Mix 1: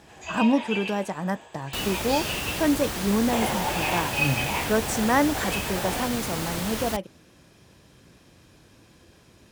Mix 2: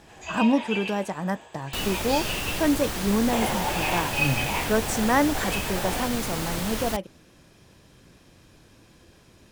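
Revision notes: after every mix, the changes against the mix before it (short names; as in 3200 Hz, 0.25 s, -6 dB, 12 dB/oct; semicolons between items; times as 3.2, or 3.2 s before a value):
master: remove HPF 44 Hz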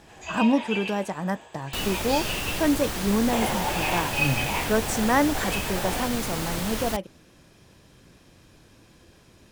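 none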